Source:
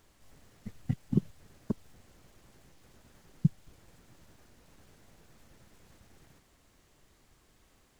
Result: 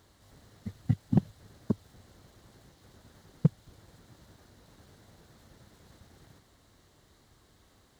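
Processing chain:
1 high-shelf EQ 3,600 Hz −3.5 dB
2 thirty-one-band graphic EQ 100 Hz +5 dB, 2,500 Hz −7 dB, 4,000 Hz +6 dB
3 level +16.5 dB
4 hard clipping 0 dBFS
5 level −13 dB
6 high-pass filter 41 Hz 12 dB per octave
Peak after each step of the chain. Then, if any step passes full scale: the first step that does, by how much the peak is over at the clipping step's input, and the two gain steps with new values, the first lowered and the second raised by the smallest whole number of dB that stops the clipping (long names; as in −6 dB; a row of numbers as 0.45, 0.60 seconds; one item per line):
−12.0, −11.0, +5.5, 0.0, −13.0, −10.5 dBFS
step 3, 5.5 dB
step 3 +10.5 dB, step 5 −7 dB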